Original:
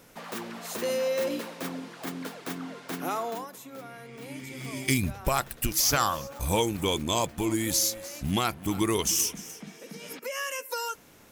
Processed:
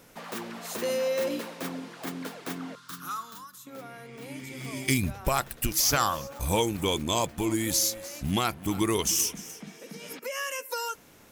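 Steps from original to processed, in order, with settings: 2.75–3.67 s: FFT filter 110 Hz 0 dB, 700 Hz -28 dB, 1.2 kHz +3 dB, 2.2 kHz -14 dB, 3.6 kHz -1 dB

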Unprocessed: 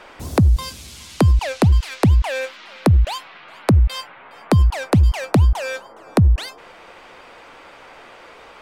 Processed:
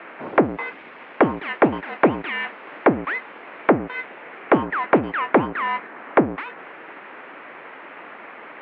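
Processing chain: word length cut 8-bit, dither none; full-wave rectifier; mistuned SSB -52 Hz 320–2400 Hz; trim +9 dB

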